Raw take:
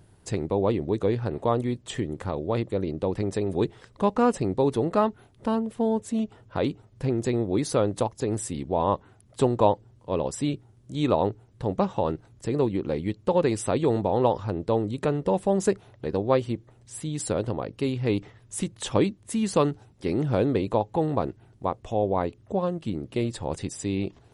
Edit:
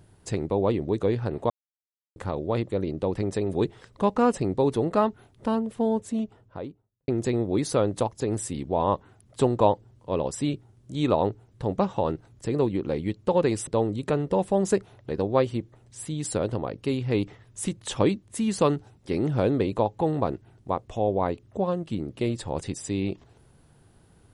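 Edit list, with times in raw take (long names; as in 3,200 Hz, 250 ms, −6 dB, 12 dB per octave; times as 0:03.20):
0:01.50–0:02.16: silence
0:05.89–0:07.08: fade out and dull
0:13.67–0:14.62: remove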